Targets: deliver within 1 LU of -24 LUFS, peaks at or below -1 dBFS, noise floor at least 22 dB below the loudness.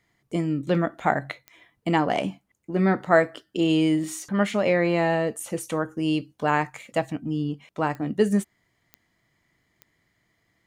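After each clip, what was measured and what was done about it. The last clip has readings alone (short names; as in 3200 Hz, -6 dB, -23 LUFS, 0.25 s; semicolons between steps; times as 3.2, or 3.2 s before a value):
clicks 4; loudness -25.0 LUFS; peak -4.5 dBFS; loudness target -24.0 LUFS
-> de-click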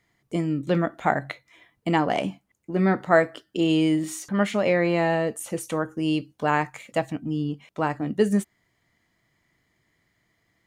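clicks 0; loudness -25.0 LUFS; peak -4.5 dBFS; loudness target -24.0 LUFS
-> gain +1 dB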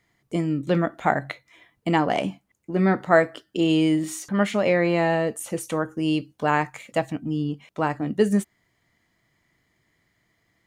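loudness -24.0 LUFS; peak -3.5 dBFS; noise floor -71 dBFS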